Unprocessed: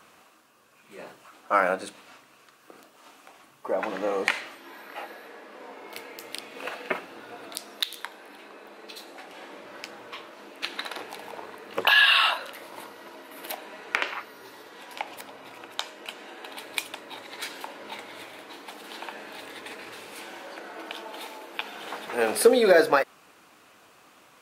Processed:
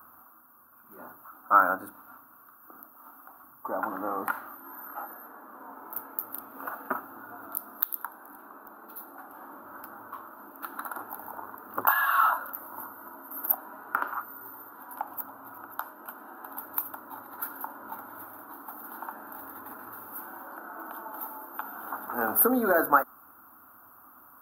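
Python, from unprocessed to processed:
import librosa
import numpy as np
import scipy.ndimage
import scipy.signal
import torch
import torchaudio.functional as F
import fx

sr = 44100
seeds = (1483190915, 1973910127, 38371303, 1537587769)

y = fx.curve_eq(x, sr, hz=(100.0, 170.0, 250.0, 470.0, 850.0, 1400.0, 2100.0, 4900.0, 7600.0, 13000.0), db=(0, -13, 0, -15, -2, 2, -30, -28, -29, 14))
y = y * librosa.db_to_amplitude(3.0)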